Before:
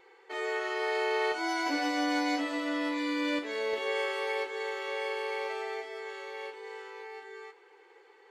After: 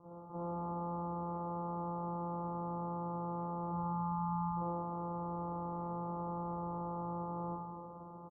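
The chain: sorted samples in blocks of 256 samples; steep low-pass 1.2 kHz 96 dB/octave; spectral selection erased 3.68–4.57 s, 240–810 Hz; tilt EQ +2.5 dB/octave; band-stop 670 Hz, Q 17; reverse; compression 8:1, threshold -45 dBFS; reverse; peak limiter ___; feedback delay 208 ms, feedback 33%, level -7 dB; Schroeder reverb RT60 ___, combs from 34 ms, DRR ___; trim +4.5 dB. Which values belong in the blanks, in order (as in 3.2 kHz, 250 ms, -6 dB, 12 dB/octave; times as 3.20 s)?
-43 dBFS, 0.74 s, -8.5 dB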